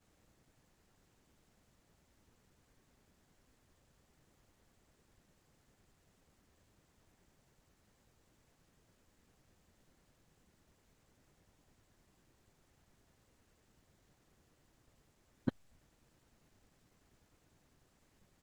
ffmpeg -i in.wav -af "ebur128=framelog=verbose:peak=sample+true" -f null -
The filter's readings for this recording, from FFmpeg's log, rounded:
Integrated loudness:
  I:         -42.4 LUFS
  Threshold: -52.3 LUFS
Loudness range:
  LRA:         0.0 LU
  Threshold: -71.1 LUFS
  LRA low:   -51.1 LUFS
  LRA high:  -51.1 LUFS
Sample peak:
  Peak:      -17.8 dBFS
True peak:
  Peak:      -17.8 dBFS